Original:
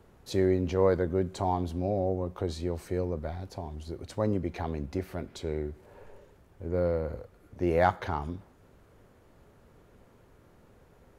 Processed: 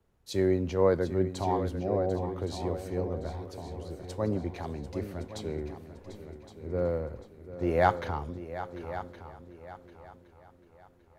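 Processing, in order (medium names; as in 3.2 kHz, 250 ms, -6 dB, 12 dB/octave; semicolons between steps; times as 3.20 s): multi-head delay 372 ms, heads second and third, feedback 49%, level -10 dB; three bands expanded up and down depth 40%; trim -2 dB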